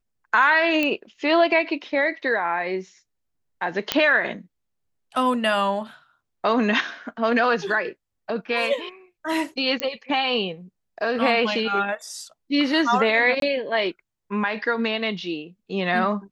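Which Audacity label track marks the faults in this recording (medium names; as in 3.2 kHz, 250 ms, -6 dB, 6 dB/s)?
0.830000	0.830000	pop -10 dBFS
3.920000	3.920000	pop -3 dBFS
9.800000	9.800000	pop -9 dBFS
13.400000	13.420000	dropout 22 ms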